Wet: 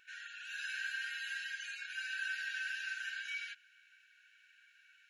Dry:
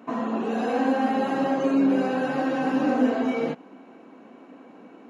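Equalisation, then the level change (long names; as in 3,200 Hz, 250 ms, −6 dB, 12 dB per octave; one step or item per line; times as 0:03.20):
linear-phase brick-wall high-pass 1,400 Hz
notch filter 2,000 Hz, Q 5.5
−1.0 dB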